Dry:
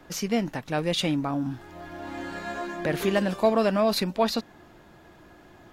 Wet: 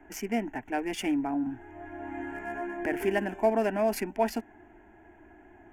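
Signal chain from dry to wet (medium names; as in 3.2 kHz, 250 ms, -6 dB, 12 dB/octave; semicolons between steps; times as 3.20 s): local Wiener filter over 9 samples; static phaser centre 790 Hz, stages 8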